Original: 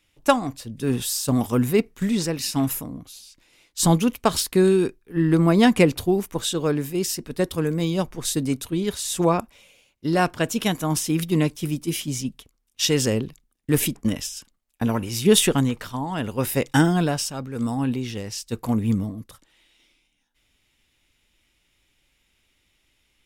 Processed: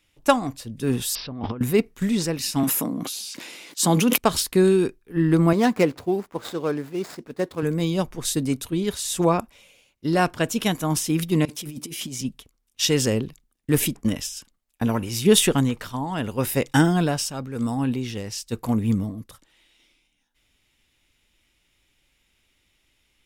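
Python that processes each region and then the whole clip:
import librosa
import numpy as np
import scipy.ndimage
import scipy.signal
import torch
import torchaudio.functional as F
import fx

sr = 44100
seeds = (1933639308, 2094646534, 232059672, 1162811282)

y = fx.chain(x, sr, fx.lowpass(hz=2500.0, slope=12),
    fx.over_compress(threshold_db=-31.0, ratio=-1.0),
    fx.resample_bad(factor=4, down='none', up='filtered'), at=(1.15, 1.61))
y = fx.chain(y, sr, fx.highpass(hz=180.0, slope=24),
    fx.sustainer(db_per_s=22.0), at=(2.63, 4.18))
y = fx.chain(y, sr, fx.median_filter(points=15),
    fx.highpass(hz=320.0, slope=6), at=(5.53, 7.63))
y = fx.chain(y, sr, fx.highpass(hz=150.0, slope=12),
    fx.over_compress(threshold_db=-34.0, ratio=-1.0), at=(11.45, 12.21))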